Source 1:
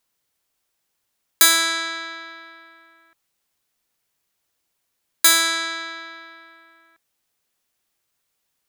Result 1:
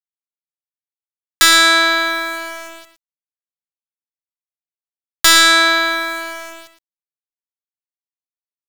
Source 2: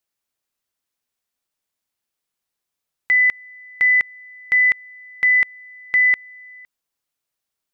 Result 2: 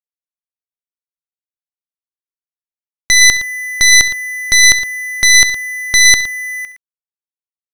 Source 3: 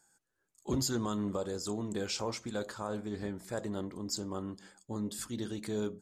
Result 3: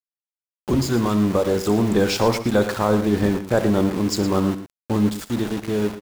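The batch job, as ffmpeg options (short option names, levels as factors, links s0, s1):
-filter_complex "[0:a]agate=range=0.0224:threshold=0.00316:ratio=3:detection=peak,aemphasis=mode=reproduction:type=75kf,dynaudnorm=f=550:g=5:m=2.51,aeval=exprs='val(0)*gte(abs(val(0)),0.0112)':c=same,aeval=exprs='(tanh(2.51*val(0)+0.45)-tanh(0.45))/2.51':c=same,aeval=exprs='0.531*sin(PI/2*2.82*val(0)/0.531)':c=same,asplit=2[s0][s1];[s1]aecho=0:1:67|114:0.141|0.251[s2];[s0][s2]amix=inputs=2:normalize=0"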